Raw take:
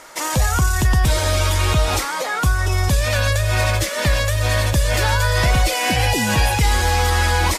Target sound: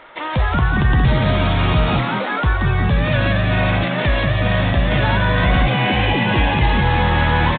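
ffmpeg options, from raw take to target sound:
ffmpeg -i in.wav -filter_complex "[0:a]asplit=7[link_01][link_02][link_03][link_04][link_05][link_06][link_07];[link_02]adelay=178,afreqshift=75,volume=-5dB[link_08];[link_03]adelay=356,afreqshift=150,volume=-11.6dB[link_09];[link_04]adelay=534,afreqshift=225,volume=-18.1dB[link_10];[link_05]adelay=712,afreqshift=300,volume=-24.7dB[link_11];[link_06]adelay=890,afreqshift=375,volume=-31.2dB[link_12];[link_07]adelay=1068,afreqshift=450,volume=-37.8dB[link_13];[link_01][link_08][link_09][link_10][link_11][link_12][link_13]amix=inputs=7:normalize=0,aresample=8000,aresample=44100" out.wav

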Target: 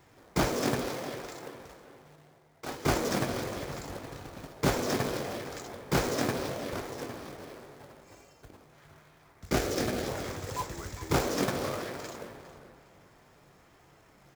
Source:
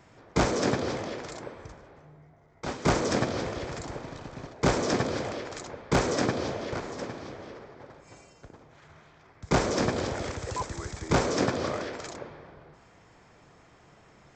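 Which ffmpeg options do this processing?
ffmpeg -i in.wav -filter_complex "[0:a]asettb=1/sr,asplit=3[link_01][link_02][link_03];[link_01]atrim=end=9.494[link_04];[link_02]atrim=start=9.49:end=10.07,asetpts=PTS-STARTPTS,afade=type=in:duration=0.004:curve=qsin,afade=type=out:start_time=0.576:duration=0.004:curve=qsin,equalizer=frequency=1000:width_type=o:width=0.3:gain=-13[link_05];[link_03]atrim=start=10.066[link_06];[link_04][link_05]acrossfade=duration=0.004:curve1=hsin:curve2=qsin[link_07];[link_07][link_06]acrossfade=duration=0.004:curve1=qsin:curve2=hsin,asplit=2[link_08][link_09];[link_09]aecho=0:1:21|52:0.266|0.158[link_10];[link_08][link_10]amix=inputs=2:normalize=0,flanger=delay=2.3:depth=5.7:regen=-56:speed=0.72:shape=sinusoidal,acrusher=bits=2:mode=log:mix=0:aa=0.000001,asettb=1/sr,asplit=3[link_11][link_12][link_13];[link_11]atrim=end=0.824[link_14];[link_12]atrim=start=0.82:end=2.72,asetpts=PTS-STARTPTS,afade=type=in:duration=0.004:curve=qsin,afade=type=out:start_time=1.896:duration=0.004:curve=qsin,lowshelf=frequency=130:gain=-11[link_15];[link_13]atrim=start=2.716[link_16];[link_14][link_15]acrossfade=duration=0.004:curve1=hsin:curve2=qsin[link_17];[link_17][link_16]acrossfade=duration=0.004:curve1=qsin:curve2=hsin,asplit=2[link_18][link_19];[link_19]adelay=408,lowpass=frequency=4400:poles=1,volume=-14dB,asplit=2[link_20][link_21];[link_21]adelay=408,lowpass=frequency=4400:poles=1,volume=0.37,asplit=2[link_22][link_23];[link_23]adelay=408,lowpass=frequency=4400:poles=1,volume=0.37,asplit=2[link_24][link_25];[link_25]adelay=408,lowpass=frequency=4400:poles=1,volume=0.37[link_26];[link_20][link_22][link_24][link_26]amix=inputs=4:normalize=0[link_27];[link_18][link_27]amix=inputs=2:normalize=0" out.wav

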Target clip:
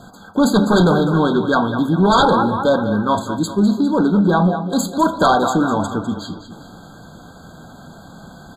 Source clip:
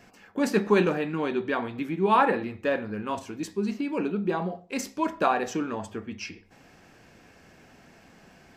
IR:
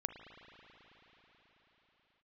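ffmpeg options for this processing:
-af "equalizer=frequency=160:width_type=o:width=0.67:gain=4,equalizer=frequency=400:width_type=o:width=0.67:gain=-6,equalizer=frequency=2500:width_type=o:width=0.67:gain=3,aecho=1:1:202|404|606|808|1010:0.251|0.123|0.0603|0.0296|0.0145,aeval=exprs='0.398*sin(PI/2*3.55*val(0)/0.398)':channel_layout=same,afftfilt=real='re*eq(mod(floor(b*sr/1024/1600),2),0)':imag='im*eq(mod(floor(b*sr/1024/1600),2),0)':win_size=1024:overlap=0.75"

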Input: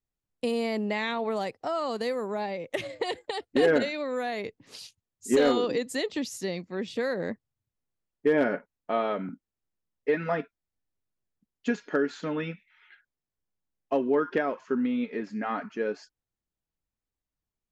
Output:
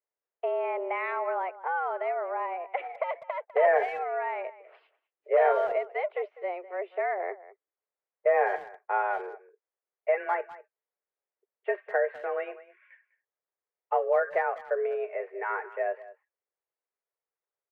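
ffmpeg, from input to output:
ffmpeg -i in.wav -filter_complex "[0:a]highpass=frequency=240:width_type=q:width=0.5412,highpass=frequency=240:width_type=q:width=1.307,lowpass=frequency=2100:width_type=q:width=0.5176,lowpass=frequency=2100:width_type=q:width=0.7071,lowpass=frequency=2100:width_type=q:width=1.932,afreqshift=180,asplit=2[link_01][link_02];[link_02]adelay=200,highpass=300,lowpass=3400,asoftclip=type=hard:threshold=-21dB,volume=-17dB[link_03];[link_01][link_03]amix=inputs=2:normalize=0" out.wav

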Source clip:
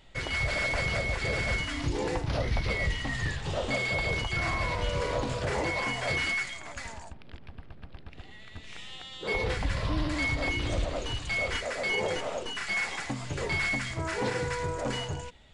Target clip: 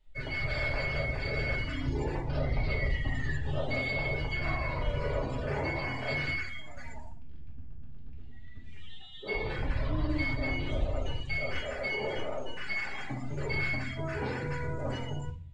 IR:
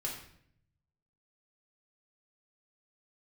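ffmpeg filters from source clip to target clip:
-filter_complex "[1:a]atrim=start_sample=2205[link_01];[0:a][link_01]afir=irnorm=-1:irlink=0,afftdn=noise_reduction=16:noise_floor=-38,volume=-4.5dB"

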